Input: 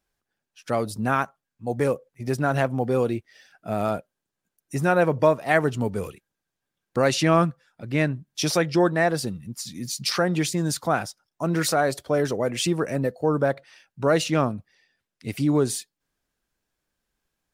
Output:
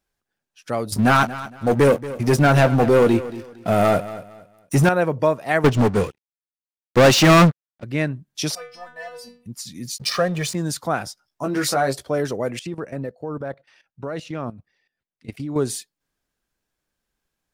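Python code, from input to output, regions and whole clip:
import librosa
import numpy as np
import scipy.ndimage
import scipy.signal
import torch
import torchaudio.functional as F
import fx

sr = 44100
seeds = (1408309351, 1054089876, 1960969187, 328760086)

y = fx.chain(x, sr, fx.doubler(ms=21.0, db=-12),
    fx.leveller(passes=3),
    fx.echo_feedback(ms=230, feedback_pct=27, wet_db=-15.5), at=(0.92, 4.89))
y = fx.chain(y, sr, fx.lowpass(hz=6900.0, slope=12),
    fx.leveller(passes=5),
    fx.upward_expand(threshold_db=-34.0, expansion=2.5), at=(5.64, 7.84))
y = fx.chain(y, sr, fx.leveller(passes=1),
    fx.low_shelf_res(hz=490.0, db=-7.5, q=3.0),
    fx.stiff_resonator(f0_hz=240.0, decay_s=0.43, stiffness=0.002), at=(8.55, 9.46))
y = fx.chain(y, sr, fx.comb(ms=1.7, depth=0.78),
    fx.backlash(play_db=-32.0), at=(9.98, 10.55))
y = fx.chain(y, sr, fx.peak_eq(hz=5000.0, db=3.5, octaves=0.22),
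    fx.doubler(ms=15.0, db=-3.5), at=(11.05, 12.05))
y = fx.chain(y, sr, fx.high_shelf(hz=5700.0, db=-11.0),
    fx.level_steps(step_db=14), at=(12.59, 15.56))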